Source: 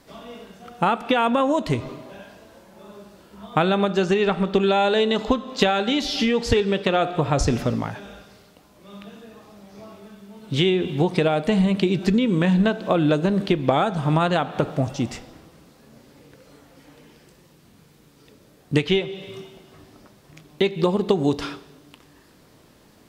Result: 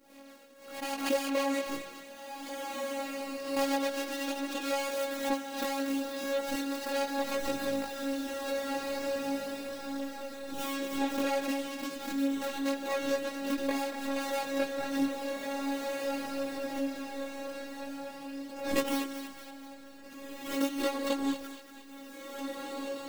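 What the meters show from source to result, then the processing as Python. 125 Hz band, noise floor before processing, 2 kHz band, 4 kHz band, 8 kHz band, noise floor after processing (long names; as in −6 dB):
−33.0 dB, −54 dBFS, −7.5 dB, −10.5 dB, −1.0 dB, −49 dBFS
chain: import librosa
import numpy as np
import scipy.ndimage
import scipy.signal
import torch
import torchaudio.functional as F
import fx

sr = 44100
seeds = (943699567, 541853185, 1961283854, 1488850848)

y = scipy.signal.medfilt(x, 41)
y = fx.riaa(y, sr, side='recording')
y = fx.robotise(y, sr, hz=276.0)
y = fx.echo_diffused(y, sr, ms=1732, feedback_pct=46, wet_db=-6.5)
y = fx.rider(y, sr, range_db=4, speed_s=2.0)
y = fx.chorus_voices(y, sr, voices=2, hz=0.4, base_ms=20, depth_ms=3.6, mix_pct=50)
y = fx.high_shelf(y, sr, hz=4900.0, db=-5.0)
y = fx.echo_thinned(y, sr, ms=234, feedback_pct=51, hz=900.0, wet_db=-9)
y = fx.pre_swell(y, sr, db_per_s=80.0)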